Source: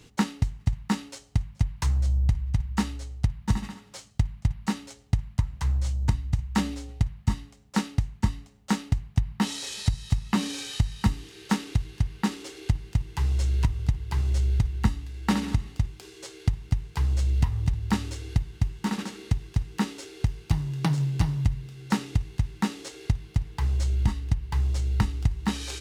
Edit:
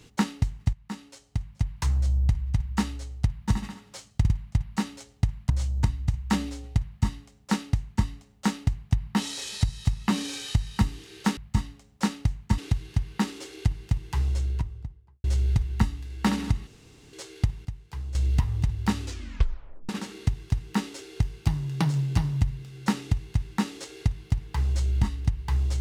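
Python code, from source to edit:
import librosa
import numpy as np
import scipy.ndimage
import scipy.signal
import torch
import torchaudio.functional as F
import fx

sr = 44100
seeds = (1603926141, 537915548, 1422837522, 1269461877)

y = fx.studio_fade_out(x, sr, start_s=13.08, length_s=1.2)
y = fx.edit(y, sr, fx.fade_in_from(start_s=0.73, length_s=1.21, floor_db=-14.5),
    fx.stutter(start_s=4.2, slice_s=0.05, count=3),
    fx.cut(start_s=5.4, length_s=0.35),
    fx.duplicate(start_s=7.1, length_s=1.21, to_s=11.62),
    fx.room_tone_fill(start_s=15.71, length_s=0.46),
    fx.clip_gain(start_s=16.69, length_s=0.5, db=-10.0),
    fx.tape_stop(start_s=18.06, length_s=0.87), tone=tone)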